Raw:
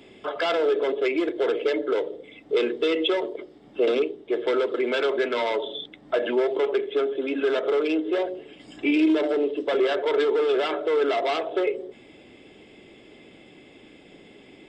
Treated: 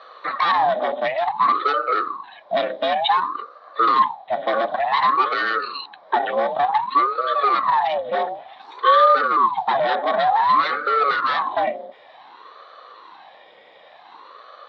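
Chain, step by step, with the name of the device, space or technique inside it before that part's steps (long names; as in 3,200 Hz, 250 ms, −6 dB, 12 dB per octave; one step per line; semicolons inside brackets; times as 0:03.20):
voice changer toy (ring modulator whose carrier an LFO sweeps 530 Hz, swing 70%, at 0.55 Hz; loudspeaker in its box 520–4,500 Hz, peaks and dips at 530 Hz +4 dB, 780 Hz +7 dB, 1,100 Hz +9 dB, 1,800 Hz +6 dB, 2,700 Hz −7 dB, 3,900 Hz +7 dB)
level +4 dB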